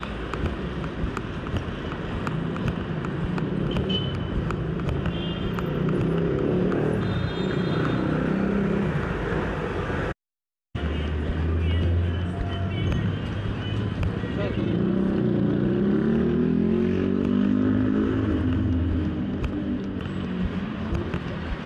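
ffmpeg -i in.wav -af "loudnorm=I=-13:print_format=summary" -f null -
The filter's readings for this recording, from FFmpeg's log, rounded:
Input Integrated:    -26.1 LUFS
Input True Peak:     -12.9 dBTP
Input LRA:             5.3 LU
Input Threshold:     -36.1 LUFS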